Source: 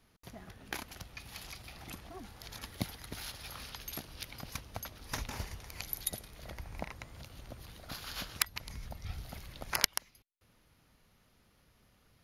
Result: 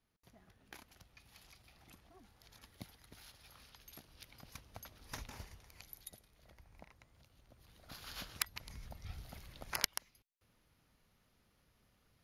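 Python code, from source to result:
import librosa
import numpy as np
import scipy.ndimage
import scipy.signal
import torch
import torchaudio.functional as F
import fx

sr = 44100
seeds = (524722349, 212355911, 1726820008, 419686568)

y = fx.gain(x, sr, db=fx.line((3.74, -14.5), (5.14, -8.0), (6.2, -17.0), (7.49, -17.0), (8.07, -6.0)))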